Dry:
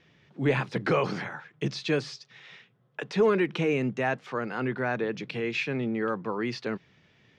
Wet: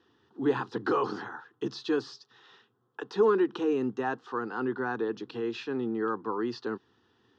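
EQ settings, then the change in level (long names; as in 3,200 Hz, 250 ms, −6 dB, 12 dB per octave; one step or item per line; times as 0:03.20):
band-pass filter 100–4,400 Hz
phaser with its sweep stopped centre 600 Hz, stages 6
+1.5 dB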